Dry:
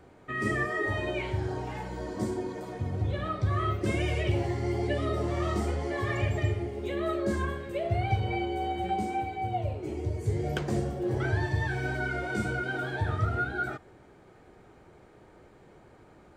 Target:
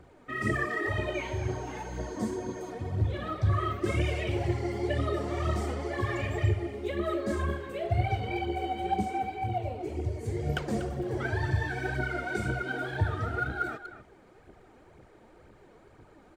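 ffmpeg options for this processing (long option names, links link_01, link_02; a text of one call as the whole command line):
ffmpeg -i in.wav -filter_complex "[0:a]aphaser=in_gain=1:out_gain=1:delay=4.6:decay=0.54:speed=2:type=triangular,asettb=1/sr,asplit=3[link_01][link_02][link_03];[link_01]atrim=end=1.144[link_04];[link_02]atrim=start=1.14:end=2.7,asetpts=PTS-STARTPTS,afade=type=in:duration=0.004:curve=qsin,afade=type=out:start_time=1.556:duration=0.004:curve=qsin,aeval=exprs='val(0)+0.00251*sin(2*PI*6400*n/s)':channel_layout=same[link_05];[link_03]atrim=start=2.696[link_06];[link_04][link_05]acrossfade=duration=0.004:curve1=hsin:curve2=qsin[link_07];[link_07][link_06]acrossfade=duration=0.004:curve1=qsin:curve2=hsin,asplit=2[link_08][link_09];[link_09]adelay=240,highpass=300,lowpass=3400,asoftclip=type=hard:threshold=-21.5dB,volume=-11dB[link_10];[link_08][link_10]amix=inputs=2:normalize=0,volume=-2.5dB" out.wav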